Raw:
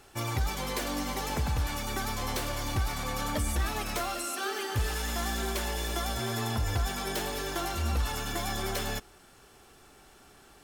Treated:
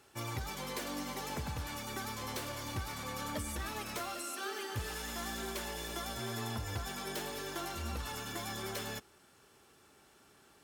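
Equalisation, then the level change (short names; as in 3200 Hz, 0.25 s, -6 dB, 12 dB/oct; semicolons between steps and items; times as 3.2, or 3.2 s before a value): HPF 87 Hz 12 dB/oct; notch 730 Hz, Q 12; -6.5 dB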